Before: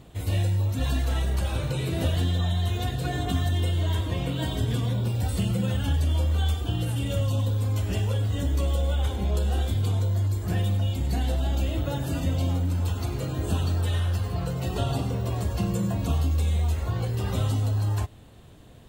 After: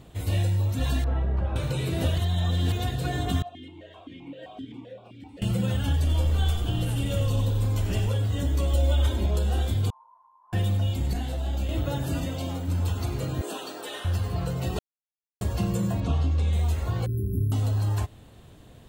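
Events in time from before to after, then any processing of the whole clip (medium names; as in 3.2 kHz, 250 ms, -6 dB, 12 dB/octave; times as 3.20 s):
1.04–1.56 s: low-pass 1.3 kHz
2.18–2.72 s: reverse
3.42–5.42 s: stepped vowel filter 7.7 Hz
5.96–8.09 s: frequency-shifting echo 89 ms, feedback 54%, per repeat -71 Hz, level -10 dB
8.73–9.26 s: comb 3.2 ms, depth 86%
9.90–10.53 s: Butterworth band-pass 990 Hz, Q 7.8
11.13–11.69 s: detune thickener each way 37 cents
12.24–12.68 s: bass shelf 130 Hz -12 dB
13.41–14.05 s: high-pass 310 Hz 24 dB/octave
14.79–15.41 s: mute
16.00–16.53 s: distance through air 100 m
17.06–17.52 s: brick-wall FIR band-stop 430–10000 Hz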